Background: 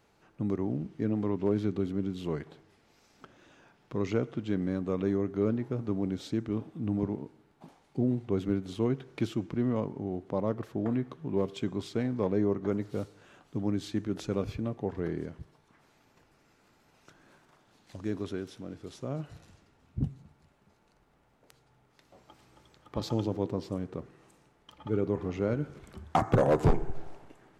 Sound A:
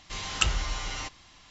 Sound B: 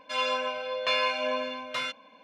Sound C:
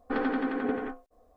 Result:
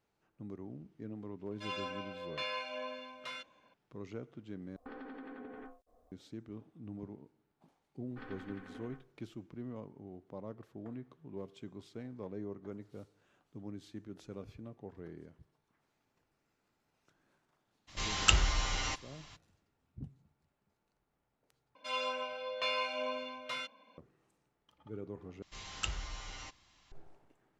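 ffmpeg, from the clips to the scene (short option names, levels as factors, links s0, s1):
-filter_complex "[2:a]asplit=2[s0][s1];[3:a]asplit=2[s2][s3];[1:a]asplit=2[s4][s5];[0:a]volume=0.178[s6];[s2]acompressor=threshold=0.0126:ratio=6:attack=3.2:release=140:knee=1:detection=peak[s7];[s3]equalizer=f=490:w=0.52:g=-12.5[s8];[s1]bandreject=f=1700:w=13[s9];[s6]asplit=4[s10][s11][s12][s13];[s10]atrim=end=4.764[s14];[s7]atrim=end=1.36,asetpts=PTS-STARTPTS,volume=0.447[s15];[s11]atrim=start=6.116:end=21.754[s16];[s9]atrim=end=2.23,asetpts=PTS-STARTPTS,volume=0.398[s17];[s12]atrim=start=23.976:end=25.424[s18];[s5]atrim=end=1.5,asetpts=PTS-STARTPTS,volume=0.251[s19];[s13]atrim=start=26.916[s20];[s0]atrim=end=2.23,asetpts=PTS-STARTPTS,volume=0.237,afade=t=in:d=0.004:c=hsin,afade=t=out:st=2.226:d=0.004:c=hsin,adelay=1510[s21];[s8]atrim=end=1.36,asetpts=PTS-STARTPTS,volume=0.237,afade=t=in:d=0.004:c=hsin,afade=t=out:st=1.356:d=0.004:c=hsin,adelay=8060[s22];[s4]atrim=end=1.5,asetpts=PTS-STARTPTS,volume=0.944,afade=t=in:d=0.02,afade=t=out:st=1.48:d=0.02,adelay=17870[s23];[s14][s15]acrossfade=d=0.004:c1=hsin:c2=hsin[s24];[s24][s16]acrossfade=d=0.004:c1=hsin:c2=hsin[s25];[s25][s17]acrossfade=d=0.004:c1=hsin:c2=hsin[s26];[s26][s18]acrossfade=d=0.004:c1=hsin:c2=hsin[s27];[s27][s19]acrossfade=d=0.004:c1=hsin:c2=hsin[s28];[s28][s20]acrossfade=d=0.004:c1=hsin:c2=hsin[s29];[s29][s21][s22][s23]amix=inputs=4:normalize=0"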